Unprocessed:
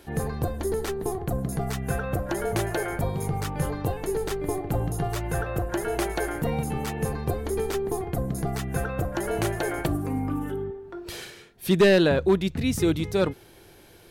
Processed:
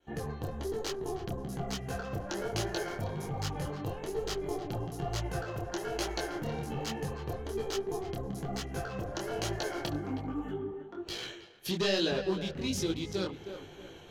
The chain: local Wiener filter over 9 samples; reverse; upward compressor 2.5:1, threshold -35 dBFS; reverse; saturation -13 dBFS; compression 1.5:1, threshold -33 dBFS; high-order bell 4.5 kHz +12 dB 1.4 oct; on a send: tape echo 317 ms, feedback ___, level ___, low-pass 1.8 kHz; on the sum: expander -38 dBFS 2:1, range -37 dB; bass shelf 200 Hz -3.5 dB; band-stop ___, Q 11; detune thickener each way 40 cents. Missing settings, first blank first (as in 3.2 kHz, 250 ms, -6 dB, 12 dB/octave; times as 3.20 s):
31%, -8.5 dB, 3.6 kHz